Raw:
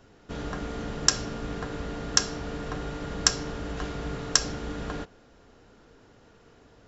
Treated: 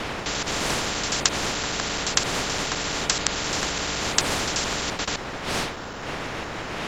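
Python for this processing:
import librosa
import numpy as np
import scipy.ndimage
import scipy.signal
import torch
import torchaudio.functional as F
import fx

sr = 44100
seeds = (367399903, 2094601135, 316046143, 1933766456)

y = fx.block_reorder(x, sr, ms=86.0, group=3)
y = fx.dmg_wind(y, sr, seeds[0], corner_hz=480.0, level_db=-30.0)
y = fx.spectral_comp(y, sr, ratio=4.0)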